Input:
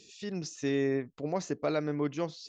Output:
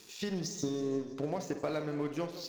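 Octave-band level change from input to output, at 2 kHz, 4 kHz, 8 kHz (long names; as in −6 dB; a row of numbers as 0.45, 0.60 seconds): −5.5 dB, +1.0 dB, can't be measured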